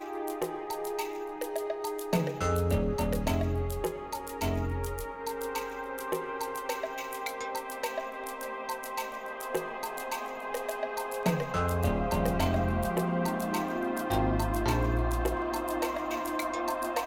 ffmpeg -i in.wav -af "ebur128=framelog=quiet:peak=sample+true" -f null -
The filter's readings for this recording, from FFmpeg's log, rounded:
Integrated loudness:
  I:         -32.1 LUFS
  Threshold: -42.1 LUFS
Loudness range:
  LRA:         6.1 LU
  Threshold: -52.0 LUFS
  LRA low:   -35.6 LUFS
  LRA high:  -29.5 LUFS
Sample peak:
  Peak:      -14.3 dBFS
True peak:
  Peak:      -14.3 dBFS